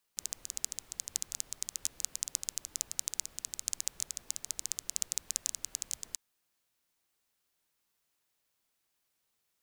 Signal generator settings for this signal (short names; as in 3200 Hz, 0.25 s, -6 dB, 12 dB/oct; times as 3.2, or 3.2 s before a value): rain from filtered ticks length 5.99 s, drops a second 13, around 6800 Hz, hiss -20 dB